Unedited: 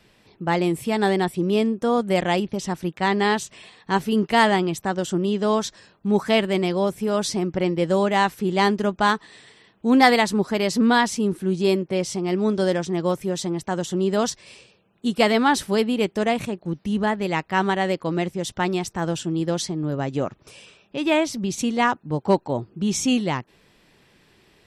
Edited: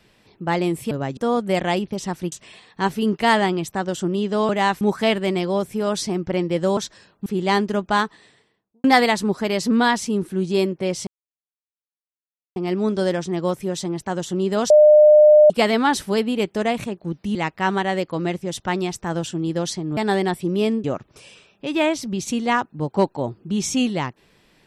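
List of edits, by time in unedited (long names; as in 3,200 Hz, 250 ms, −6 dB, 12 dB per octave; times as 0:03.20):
0:00.91–0:01.78: swap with 0:19.89–0:20.15
0:02.93–0:03.42: remove
0:05.59–0:06.08: swap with 0:08.04–0:08.36
0:09.03–0:09.94: fade out and dull
0:12.17: splice in silence 1.49 s
0:14.31–0:15.11: beep over 604 Hz −7 dBFS
0:16.96–0:17.27: remove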